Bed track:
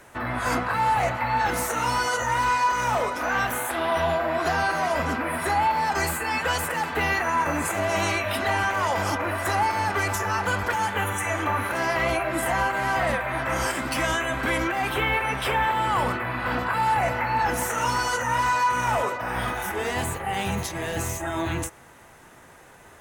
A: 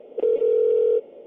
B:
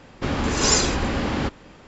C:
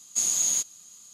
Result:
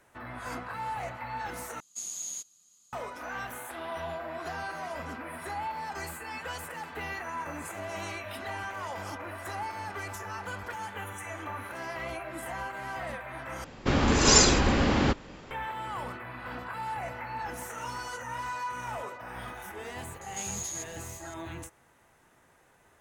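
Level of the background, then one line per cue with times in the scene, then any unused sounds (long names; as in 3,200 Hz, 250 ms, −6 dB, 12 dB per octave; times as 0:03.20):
bed track −13 dB
0:01.80: overwrite with C −13 dB
0:13.64: overwrite with B
0:20.21: mix in C −1 dB + downward compressor 2.5 to 1, threshold −39 dBFS
not used: A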